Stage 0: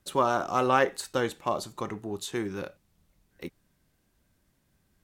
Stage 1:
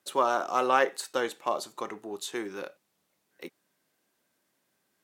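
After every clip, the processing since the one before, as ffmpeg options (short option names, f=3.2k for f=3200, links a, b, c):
-af "highpass=350"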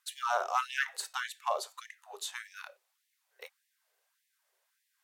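-af "afftfilt=real='re*gte(b*sr/1024,370*pow(1700/370,0.5+0.5*sin(2*PI*1.7*pts/sr)))':imag='im*gte(b*sr/1024,370*pow(1700/370,0.5+0.5*sin(2*PI*1.7*pts/sr)))':win_size=1024:overlap=0.75,volume=-1.5dB"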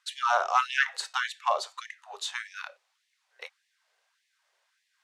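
-af "highpass=630,lowpass=5.9k,volume=7dB"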